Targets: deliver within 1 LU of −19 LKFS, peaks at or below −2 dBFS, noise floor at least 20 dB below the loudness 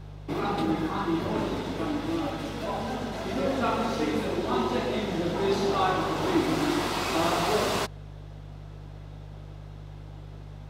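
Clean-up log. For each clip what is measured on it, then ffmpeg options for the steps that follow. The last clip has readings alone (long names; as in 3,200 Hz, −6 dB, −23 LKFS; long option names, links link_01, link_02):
mains hum 50 Hz; hum harmonics up to 150 Hz; level of the hum −39 dBFS; integrated loudness −28.0 LKFS; sample peak −12.0 dBFS; target loudness −19.0 LKFS
→ -af "bandreject=frequency=50:width_type=h:width=4,bandreject=frequency=100:width_type=h:width=4,bandreject=frequency=150:width_type=h:width=4"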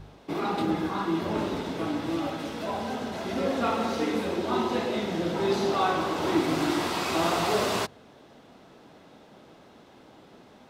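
mains hum none found; integrated loudness −28.0 LKFS; sample peak −13.0 dBFS; target loudness −19.0 LKFS
→ -af "volume=9dB"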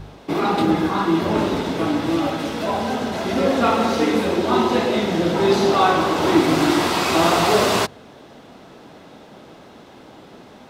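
integrated loudness −19.0 LKFS; sample peak −4.0 dBFS; background noise floor −45 dBFS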